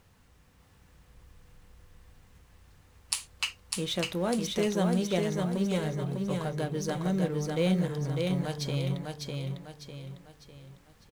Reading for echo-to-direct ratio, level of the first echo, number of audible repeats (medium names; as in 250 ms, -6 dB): -2.5 dB, -3.5 dB, 5